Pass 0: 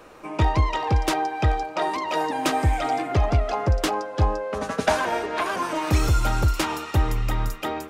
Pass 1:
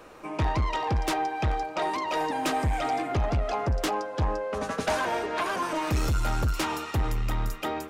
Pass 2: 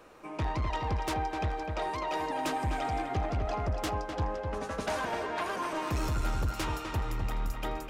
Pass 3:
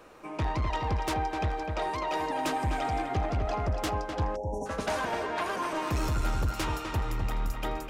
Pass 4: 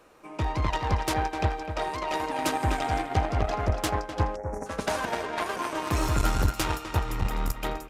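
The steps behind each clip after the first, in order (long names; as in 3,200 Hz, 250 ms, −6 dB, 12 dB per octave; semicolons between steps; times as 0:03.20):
soft clipping −19 dBFS, distortion −12 dB; level −1.5 dB
feedback echo with a low-pass in the loop 253 ms, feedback 43%, low-pass 2,800 Hz, level −5 dB; level −6 dB
time-frequency box erased 0:04.36–0:04.66, 1,000–5,400 Hz; level +2 dB
high-shelf EQ 6,900 Hz +5.5 dB; harmonic generator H 3 −12 dB, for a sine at −19.5 dBFS; downsampling to 32,000 Hz; level +8 dB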